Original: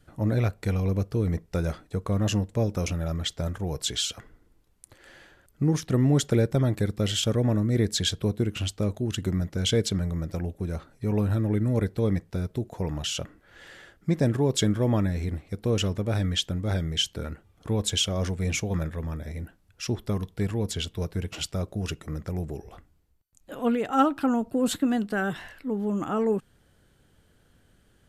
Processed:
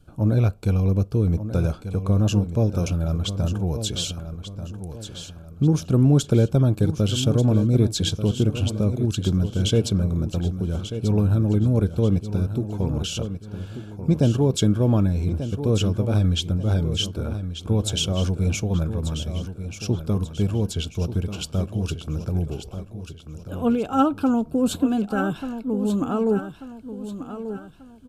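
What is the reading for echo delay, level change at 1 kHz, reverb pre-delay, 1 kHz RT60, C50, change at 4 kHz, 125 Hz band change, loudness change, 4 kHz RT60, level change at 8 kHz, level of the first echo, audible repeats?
1,188 ms, +1.0 dB, no reverb audible, no reverb audible, no reverb audible, +0.5 dB, +6.0 dB, +4.5 dB, no reverb audible, +0.5 dB, −10.5 dB, 3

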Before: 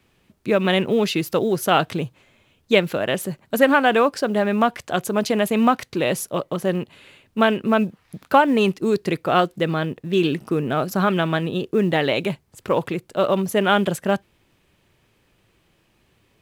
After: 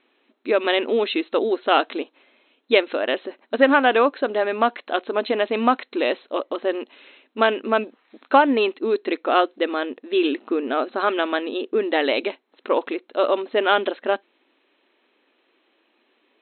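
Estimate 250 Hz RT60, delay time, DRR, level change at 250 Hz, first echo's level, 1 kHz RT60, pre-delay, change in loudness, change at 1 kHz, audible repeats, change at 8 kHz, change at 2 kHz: no reverb audible, no echo audible, no reverb audible, −4.0 dB, no echo audible, no reverb audible, no reverb audible, −1.0 dB, 0.0 dB, no echo audible, below −40 dB, 0.0 dB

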